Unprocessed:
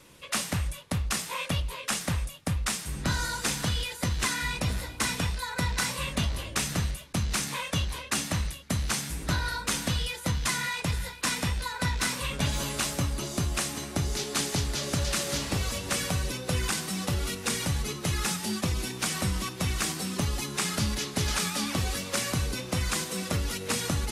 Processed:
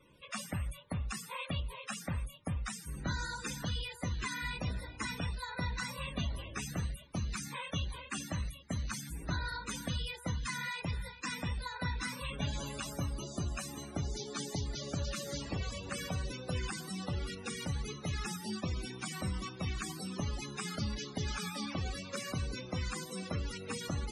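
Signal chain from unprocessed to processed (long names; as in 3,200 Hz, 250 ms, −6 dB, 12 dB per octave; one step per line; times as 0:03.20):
hum removal 117.4 Hz, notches 13
spectral peaks only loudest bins 64
level −7 dB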